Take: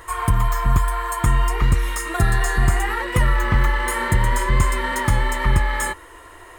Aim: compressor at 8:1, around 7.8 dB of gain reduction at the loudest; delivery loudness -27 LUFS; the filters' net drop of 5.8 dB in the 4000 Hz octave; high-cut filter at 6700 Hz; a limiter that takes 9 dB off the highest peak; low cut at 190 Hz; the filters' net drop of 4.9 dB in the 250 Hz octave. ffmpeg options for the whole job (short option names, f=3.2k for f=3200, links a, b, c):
-af "highpass=190,lowpass=6.7k,equalizer=f=250:t=o:g=-4,equalizer=f=4k:t=o:g=-8.5,acompressor=threshold=-29dB:ratio=8,volume=8.5dB,alimiter=limit=-18.5dB:level=0:latency=1"